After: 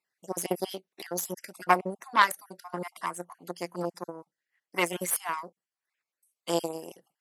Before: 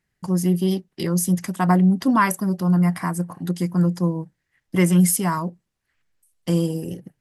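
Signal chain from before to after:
time-frequency cells dropped at random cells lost 32%
speech leveller within 5 dB 2 s
harmonic generator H 2 −21 dB, 3 −12 dB, 6 −34 dB, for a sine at −6 dBFS
high-pass filter 560 Hz 12 dB per octave
level +4 dB

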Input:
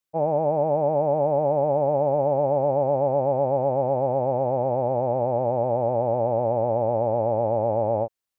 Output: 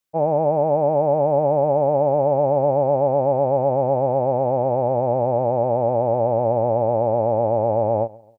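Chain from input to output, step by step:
repeating echo 136 ms, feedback 39%, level −23.5 dB
level +3.5 dB

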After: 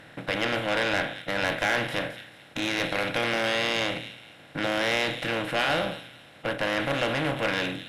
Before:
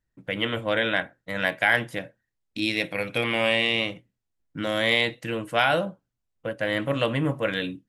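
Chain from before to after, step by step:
compressor on every frequency bin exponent 0.4
delay with a high-pass on its return 217 ms, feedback 31%, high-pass 3,300 Hz, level −8 dB
tube saturation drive 12 dB, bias 0.55
level −4 dB

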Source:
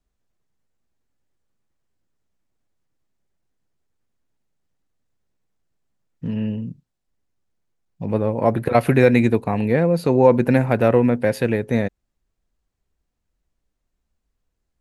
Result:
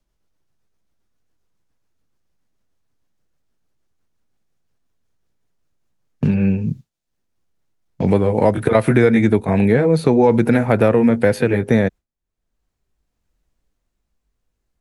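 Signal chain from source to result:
pitch glide at a constant tempo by −3 semitones ending unshifted
noise gate with hold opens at −34 dBFS
in parallel at +1 dB: brickwall limiter −9 dBFS, peak gain reduction 7.5 dB
on the sum: multiband upward and downward compressor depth 70%
level −1.5 dB

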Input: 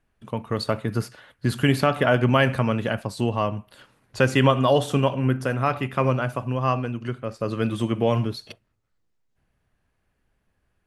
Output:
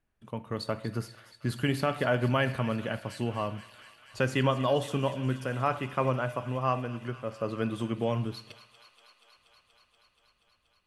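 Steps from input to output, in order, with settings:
0:05.56–0:07.83: parametric band 810 Hz +4 dB 2 octaves
delay with a high-pass on its return 239 ms, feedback 82%, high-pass 2,000 Hz, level −13 dB
convolution reverb RT60 0.95 s, pre-delay 3 ms, DRR 16 dB
level −8 dB

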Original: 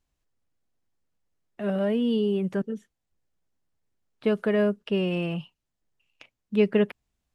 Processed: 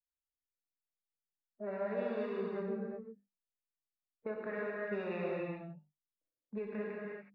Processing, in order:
adaptive Wiener filter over 41 samples
low-pass that shuts in the quiet parts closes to 380 Hz, open at −20.5 dBFS
mains-hum notches 50/100/150/200/250/300/350 Hz
noise gate −48 dBFS, range −16 dB
three-way crossover with the lows and the highs turned down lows −15 dB, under 460 Hz, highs −17 dB, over 3,700 Hz
harmonic and percussive parts rebalanced percussive −13 dB
dynamic equaliser 1,900 Hz, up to +7 dB, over −53 dBFS, Q 1.1
brickwall limiter −25.5 dBFS, peak gain reduction 7.5 dB
downward compressor 6 to 1, threshold −41 dBFS, peak gain reduction 11 dB
Butterworth band-reject 3,100 Hz, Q 3.1
reverb whose tail is shaped and stops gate 400 ms flat, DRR −3.5 dB
level +2 dB

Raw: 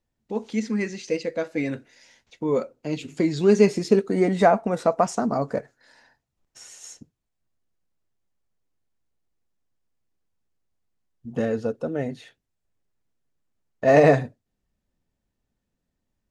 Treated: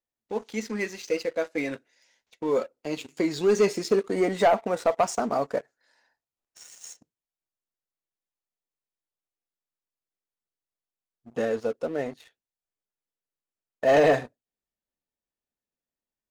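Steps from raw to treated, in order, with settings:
bass and treble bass −13 dB, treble +1 dB
leveller curve on the samples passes 2
level −7 dB

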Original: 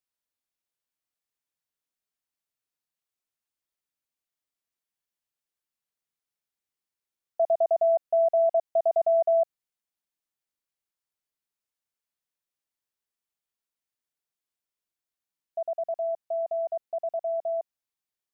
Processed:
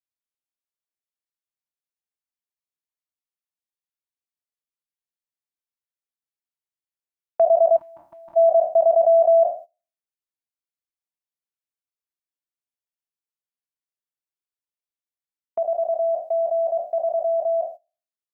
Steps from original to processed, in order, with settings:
peak hold with a decay on every bin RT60 0.43 s
noise gate −42 dBFS, range −18 dB
gain on a spectral selection 0:07.77–0:08.37, 350–820 Hz −30 dB
level +7 dB

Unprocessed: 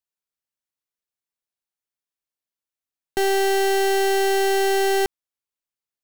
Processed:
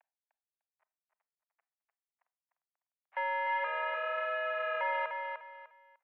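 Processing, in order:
spike at every zero crossing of −32.5 dBFS
noise reduction from a noise print of the clip's start 27 dB
upward compression, threshold −33 dBFS
pitch vibrato 0.53 Hz 40 cents
0:03.64–0:04.81: frequency shifter −460 Hz
slack as between gear wheels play −32.5 dBFS
repeating echo 300 ms, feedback 26%, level −5.5 dB
convolution reverb RT60 0.35 s, pre-delay 28 ms, DRR 16 dB
single-sideband voice off tune +170 Hz 560–2,200 Hz
level −7 dB

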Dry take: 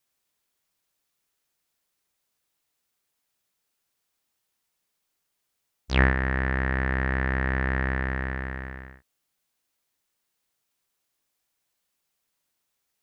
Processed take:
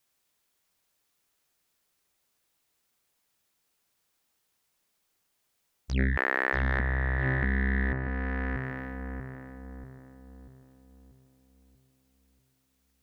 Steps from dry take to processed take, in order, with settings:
0:06.17–0:06.79: high-pass filter 350 Hz 24 dB per octave
0:07.93–0:08.79: fade in
feedback echo with a low-pass in the loop 638 ms, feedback 49%, low-pass 1,000 Hz, level −5 dB
saturating transformer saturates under 880 Hz
level +2.5 dB

